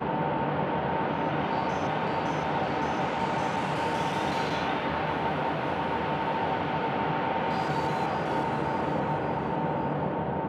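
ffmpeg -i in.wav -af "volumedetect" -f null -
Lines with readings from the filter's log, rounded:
mean_volume: -28.4 dB
max_volume: -15.5 dB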